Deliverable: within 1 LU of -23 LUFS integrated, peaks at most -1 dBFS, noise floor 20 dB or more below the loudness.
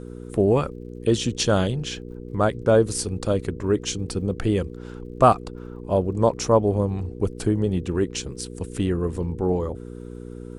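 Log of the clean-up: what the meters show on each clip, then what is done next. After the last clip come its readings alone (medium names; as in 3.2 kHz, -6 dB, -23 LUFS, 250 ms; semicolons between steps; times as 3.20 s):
tick rate 44 per s; hum 60 Hz; highest harmonic 480 Hz; hum level -34 dBFS; loudness -23.5 LUFS; peak level -3.5 dBFS; loudness target -23.0 LUFS
-> de-click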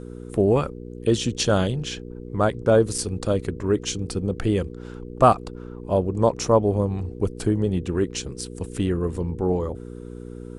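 tick rate 0.094 per s; hum 60 Hz; highest harmonic 480 Hz; hum level -34 dBFS
-> de-hum 60 Hz, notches 8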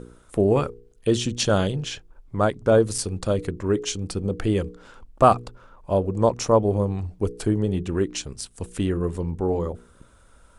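hum not found; loudness -24.0 LUFS; peak level -2.5 dBFS; loudness target -23.0 LUFS
-> trim +1 dB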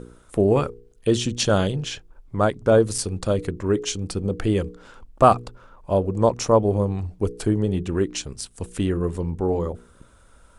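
loudness -23.0 LUFS; peak level -1.5 dBFS; noise floor -53 dBFS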